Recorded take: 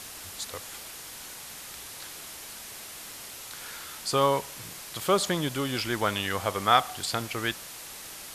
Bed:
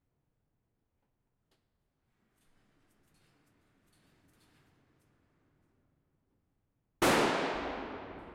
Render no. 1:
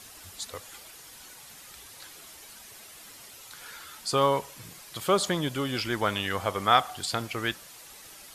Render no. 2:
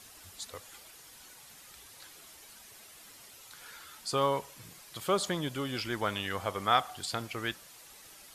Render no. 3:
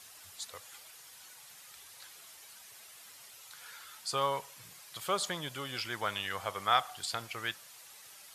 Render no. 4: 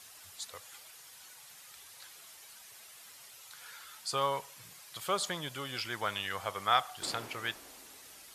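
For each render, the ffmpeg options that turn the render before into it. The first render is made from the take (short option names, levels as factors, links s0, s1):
-af "afftdn=nr=8:nf=-43"
-af "volume=0.562"
-af "highpass=120,equalizer=f=270:t=o:w=1.7:g=-11"
-filter_complex "[1:a]volume=0.1[s0];[0:a][s0]amix=inputs=2:normalize=0"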